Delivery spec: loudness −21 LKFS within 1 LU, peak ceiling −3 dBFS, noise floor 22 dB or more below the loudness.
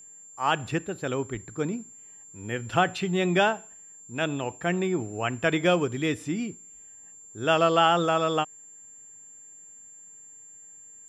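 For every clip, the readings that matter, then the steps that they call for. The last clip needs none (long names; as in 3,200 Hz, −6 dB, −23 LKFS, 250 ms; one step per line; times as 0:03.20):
interfering tone 7,300 Hz; level of the tone −46 dBFS; integrated loudness −26.5 LKFS; sample peak −9.0 dBFS; target loudness −21.0 LKFS
→ notch filter 7,300 Hz, Q 30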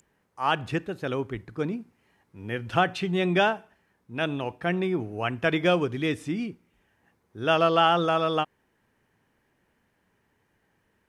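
interfering tone none found; integrated loudness −26.5 LKFS; sample peak −9.0 dBFS; target loudness −21.0 LKFS
→ level +5.5 dB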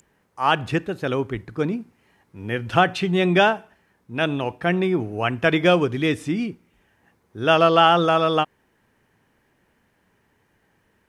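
integrated loudness −21.0 LKFS; sample peak −3.5 dBFS; background noise floor −66 dBFS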